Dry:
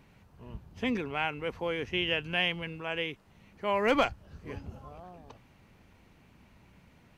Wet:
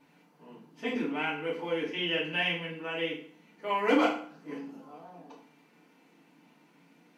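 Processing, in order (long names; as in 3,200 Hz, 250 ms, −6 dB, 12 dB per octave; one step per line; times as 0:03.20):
linear-phase brick-wall high-pass 160 Hz
feedback delay network reverb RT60 0.52 s, low-frequency decay 1.2×, high-frequency decay 0.85×, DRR −7 dB
level −8 dB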